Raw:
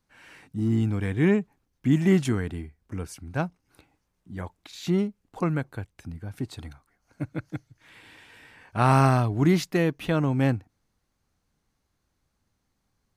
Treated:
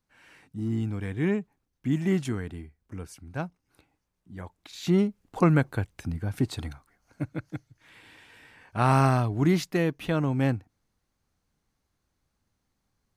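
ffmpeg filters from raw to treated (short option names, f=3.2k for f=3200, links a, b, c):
-af "volume=6dB,afade=t=in:st=4.44:d=1.15:silence=0.281838,afade=t=out:st=6.4:d=1.01:silence=0.398107"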